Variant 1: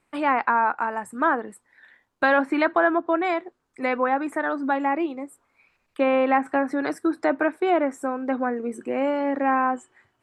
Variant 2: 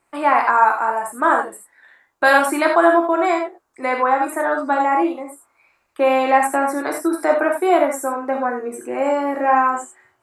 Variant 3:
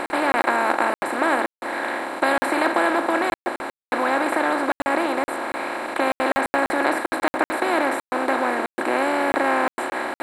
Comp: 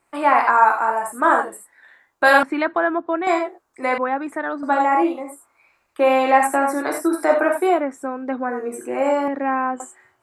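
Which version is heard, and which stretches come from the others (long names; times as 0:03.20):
2
0:02.43–0:03.27: punch in from 1
0:03.98–0:04.63: punch in from 1
0:07.74–0:08.50: punch in from 1, crossfade 0.16 s
0:09.28–0:09.80: punch in from 1
not used: 3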